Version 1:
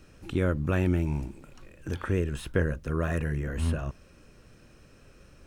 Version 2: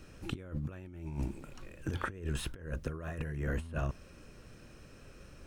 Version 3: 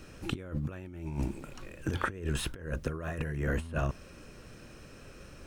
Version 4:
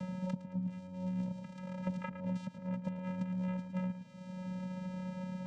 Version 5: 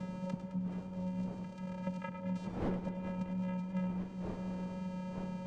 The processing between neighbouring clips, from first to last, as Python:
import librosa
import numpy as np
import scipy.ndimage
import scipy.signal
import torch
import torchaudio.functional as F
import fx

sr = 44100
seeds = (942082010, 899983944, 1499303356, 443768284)

y1 = fx.over_compress(x, sr, threshold_db=-32.0, ratio=-0.5)
y1 = y1 * librosa.db_to_amplitude(-4.0)
y2 = fx.low_shelf(y1, sr, hz=140.0, db=-3.5)
y2 = y2 * librosa.db_to_amplitude(5.0)
y3 = fx.vocoder(y2, sr, bands=4, carrier='square', carrier_hz=184.0)
y3 = fx.echo_feedback(y3, sr, ms=110, feedback_pct=32, wet_db=-12.5)
y3 = fx.band_squash(y3, sr, depth_pct=100)
y3 = y3 * librosa.db_to_amplitude(-2.0)
y4 = fx.dmg_wind(y3, sr, seeds[0], corner_hz=440.0, level_db=-48.0)
y4 = y4 + 10.0 ** (-11.0 / 20.0) * np.pad(y4, (int(100 * sr / 1000.0), 0))[:len(y4)]
y4 = fx.echo_warbled(y4, sr, ms=212, feedback_pct=72, rate_hz=2.8, cents=59, wet_db=-13.5)
y4 = y4 * librosa.db_to_amplitude(-1.0)